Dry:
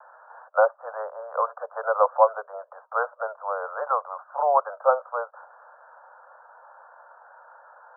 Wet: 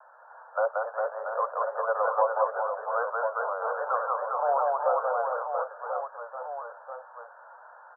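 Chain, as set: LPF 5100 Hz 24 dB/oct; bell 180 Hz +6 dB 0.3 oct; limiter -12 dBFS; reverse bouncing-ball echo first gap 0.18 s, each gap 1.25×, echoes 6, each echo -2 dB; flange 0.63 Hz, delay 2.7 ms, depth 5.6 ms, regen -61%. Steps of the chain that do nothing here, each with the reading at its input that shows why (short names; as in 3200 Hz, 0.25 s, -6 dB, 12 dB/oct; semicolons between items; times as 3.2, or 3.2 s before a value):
LPF 5100 Hz: input band ends at 1700 Hz; bell 180 Hz: input band starts at 400 Hz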